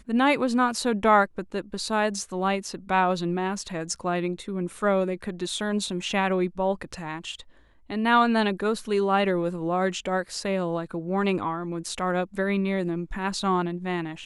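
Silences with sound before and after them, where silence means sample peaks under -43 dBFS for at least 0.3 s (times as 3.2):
7.43–7.9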